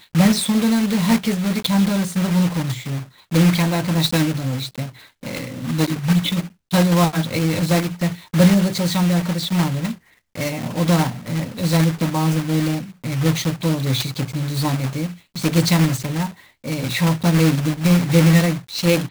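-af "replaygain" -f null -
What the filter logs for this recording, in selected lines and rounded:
track_gain = -0.5 dB
track_peak = 0.490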